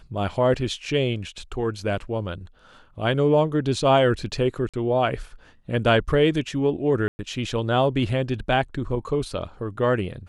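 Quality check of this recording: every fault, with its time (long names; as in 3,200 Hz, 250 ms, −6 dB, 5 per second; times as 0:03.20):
0:04.69–0:04.74: drop-out 46 ms
0:07.08–0:07.19: drop-out 110 ms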